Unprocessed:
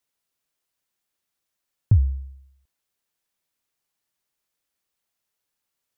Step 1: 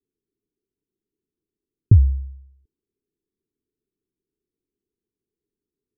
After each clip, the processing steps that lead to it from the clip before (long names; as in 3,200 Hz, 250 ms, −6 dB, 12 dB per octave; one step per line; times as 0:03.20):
drawn EQ curve 150 Hz 0 dB, 420 Hz +9 dB, 600 Hz −29 dB
level +5 dB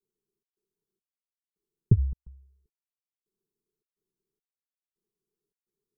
gate pattern "xxx.xxx....x" 106 BPM −60 dB
phaser with its sweep stopped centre 420 Hz, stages 8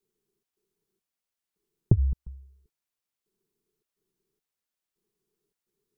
downward compressor, threshold −22 dBFS, peak gain reduction 9 dB
level +6.5 dB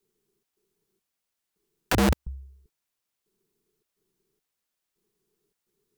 wrap-around overflow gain 21.5 dB
level +5 dB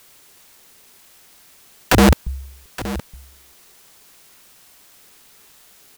in parallel at −9 dB: bit-depth reduction 8 bits, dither triangular
on the sum: single-tap delay 869 ms −14.5 dB
level +7 dB